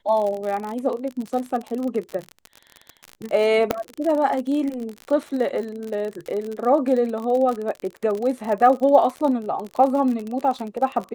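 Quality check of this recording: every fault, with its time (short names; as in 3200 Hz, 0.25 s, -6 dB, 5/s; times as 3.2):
crackle 47/s -26 dBFS
3.71 pop -6 dBFS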